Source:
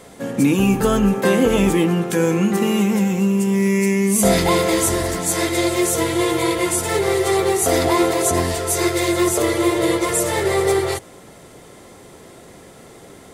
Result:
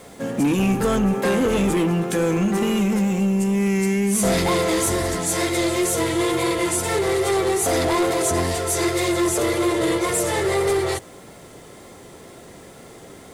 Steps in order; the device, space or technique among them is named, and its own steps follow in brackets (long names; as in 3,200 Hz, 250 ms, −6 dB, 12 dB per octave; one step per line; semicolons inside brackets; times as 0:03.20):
compact cassette (soft clipping −14.5 dBFS, distortion −14 dB; low-pass filter 13,000 Hz 12 dB per octave; tape wow and flutter 28 cents; white noise bed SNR 40 dB)